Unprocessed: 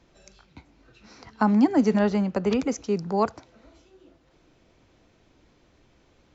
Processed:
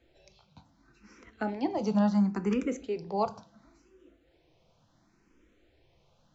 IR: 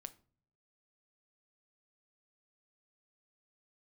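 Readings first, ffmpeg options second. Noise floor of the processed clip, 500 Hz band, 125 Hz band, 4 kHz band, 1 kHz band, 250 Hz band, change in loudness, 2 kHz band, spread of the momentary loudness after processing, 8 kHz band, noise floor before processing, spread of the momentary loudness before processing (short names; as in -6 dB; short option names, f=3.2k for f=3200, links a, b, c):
-68 dBFS, -7.0 dB, -4.5 dB, -7.0 dB, -6.0 dB, -6.5 dB, -6.5 dB, -8.0 dB, 10 LU, n/a, -62 dBFS, 8 LU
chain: -filter_complex "[1:a]atrim=start_sample=2205,asetrate=48510,aresample=44100[a];[0:a][a]afir=irnorm=-1:irlink=0,asplit=2[b][c];[c]afreqshift=0.71[d];[b][d]amix=inputs=2:normalize=1,volume=3dB"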